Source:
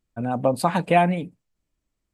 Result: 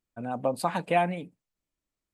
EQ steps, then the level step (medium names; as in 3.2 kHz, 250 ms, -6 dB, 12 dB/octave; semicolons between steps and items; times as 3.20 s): bass shelf 190 Hz -8 dB; -5.5 dB